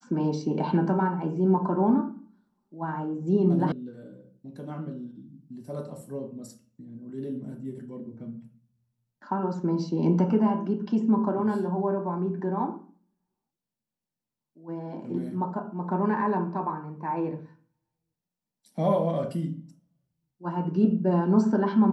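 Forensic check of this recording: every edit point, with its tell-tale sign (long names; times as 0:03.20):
0:03.72: cut off before it has died away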